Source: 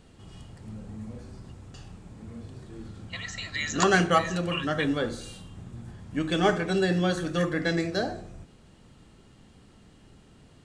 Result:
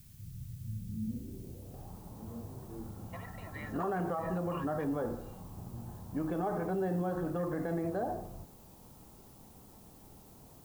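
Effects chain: low-pass sweep 130 Hz -> 900 Hz, 0.76–1.94; limiter -23.5 dBFS, peak gain reduction 18 dB; added noise blue -58 dBFS; gain -3 dB

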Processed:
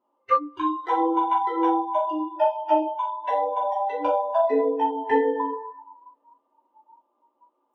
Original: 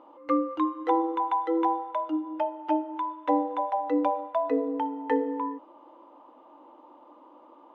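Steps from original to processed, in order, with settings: two-slope reverb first 0.46 s, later 2.4 s, DRR -7 dB; spectral noise reduction 27 dB

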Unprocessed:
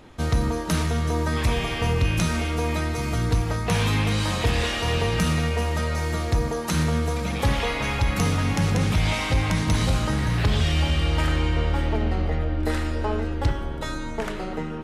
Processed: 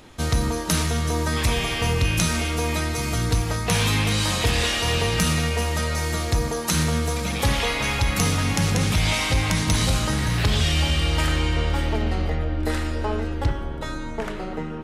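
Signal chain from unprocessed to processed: high shelf 3100 Hz +9 dB, from 12.32 s +3.5 dB, from 13.44 s -3 dB

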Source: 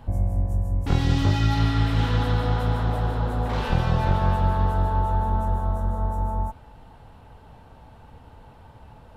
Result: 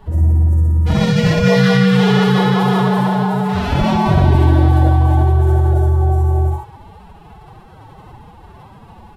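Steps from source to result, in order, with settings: loudspeakers at several distances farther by 22 m 0 dB, 44 m -4 dB; formant-preserving pitch shift +9.5 st; gain +4.5 dB

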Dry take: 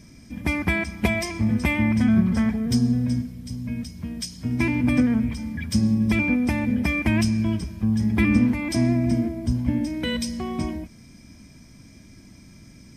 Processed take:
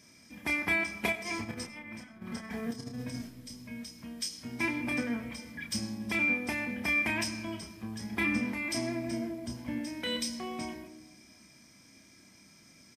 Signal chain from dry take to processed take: HPF 710 Hz 6 dB/oct; 1.12–3.28 negative-ratio compressor -35 dBFS, ratio -0.5; doubler 30 ms -5.5 dB; digital reverb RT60 1.3 s, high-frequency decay 0.25×, pre-delay 50 ms, DRR 12.5 dB; gain -4 dB

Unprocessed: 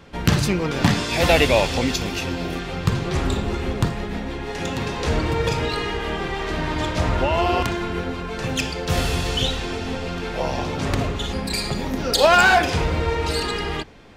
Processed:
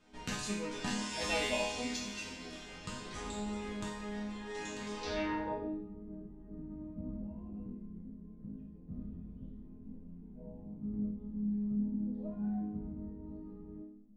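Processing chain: low-pass sweep 8100 Hz -> 200 Hz, 4.95–5.78; resonator bank G#3 minor, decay 0.68 s; gain +5 dB

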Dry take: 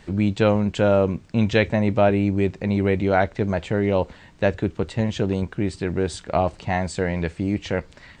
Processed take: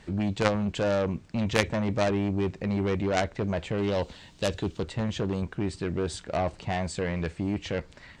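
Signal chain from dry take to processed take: added harmonics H 3 -6 dB, 5 -13 dB, 6 -31 dB, 8 -36 dB, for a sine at -5.5 dBFS; 3.78–4.83 resonant high shelf 2600 Hz +7 dB, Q 1.5; gain +1 dB

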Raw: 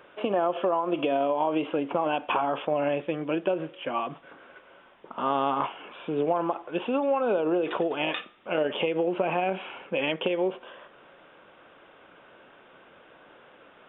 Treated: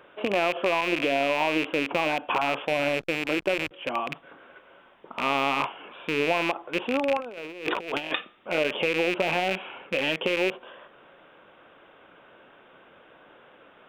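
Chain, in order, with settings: rattling part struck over -40 dBFS, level -17 dBFS; 2.67–3.71 backlash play -32.5 dBFS; 7.17–8.16 negative-ratio compressor -31 dBFS, ratio -0.5

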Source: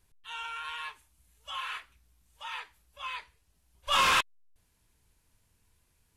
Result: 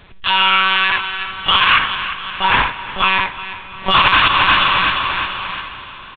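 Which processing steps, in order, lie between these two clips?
low shelf 290 Hz -9.5 dB; echo 71 ms -6.5 dB; monotone LPC vocoder at 8 kHz 190 Hz; 1.79–3.91 high shelf 2300 Hz -11 dB; feedback echo 0.35 s, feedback 53%, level -18 dB; plate-style reverb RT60 4.5 s, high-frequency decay 0.95×, DRR 17 dB; compressor, threshold -34 dBFS, peak gain reduction 14 dB; maximiser +32 dB; gain -1 dB

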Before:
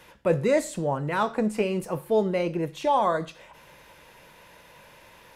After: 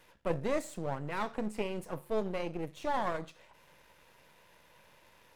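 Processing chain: half-wave gain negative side -12 dB; gain -7 dB

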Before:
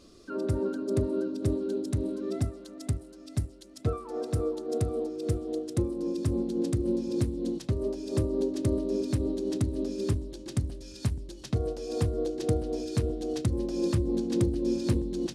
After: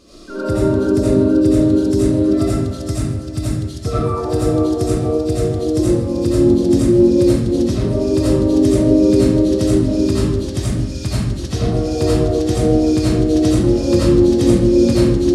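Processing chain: digital reverb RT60 0.87 s, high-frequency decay 0.8×, pre-delay 45 ms, DRR -10 dB; gain +5.5 dB

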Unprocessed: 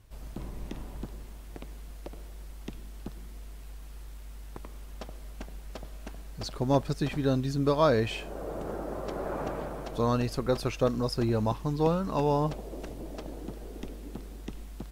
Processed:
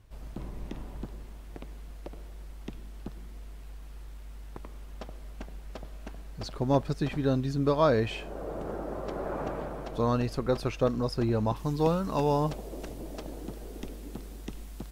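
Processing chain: high shelf 4700 Hz -6.5 dB, from 11.56 s +4 dB

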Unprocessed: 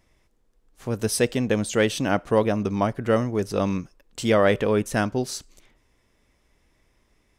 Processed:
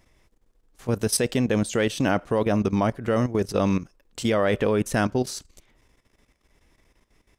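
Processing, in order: level quantiser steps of 13 dB; gain +5 dB

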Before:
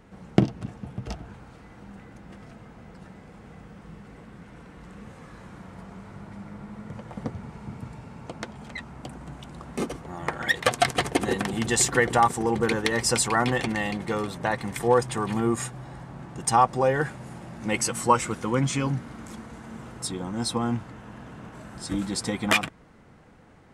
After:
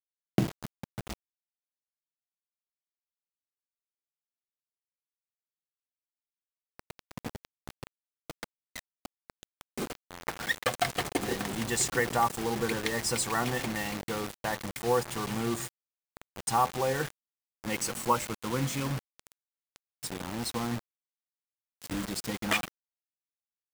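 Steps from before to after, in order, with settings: de-hum 85.89 Hz, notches 10; bit-crush 5-bit; gain -6.5 dB

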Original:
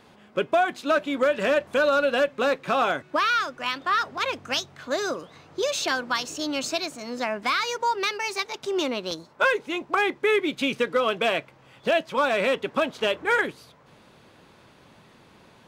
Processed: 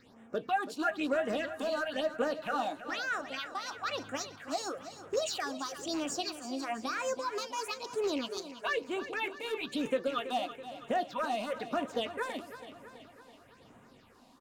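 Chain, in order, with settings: rattling part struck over -35 dBFS, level -24 dBFS; limiter -17 dBFS, peak gain reduction 5 dB; phaser stages 6, 0.95 Hz, lowest notch 100–4200 Hz; feedback echo 0.358 s, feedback 57%, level -12.5 dB; on a send at -11 dB: reverb RT60 0.15 s, pre-delay 3 ms; on the sum: speed mistake 44.1 kHz file played as 48 kHz; gain -5 dB

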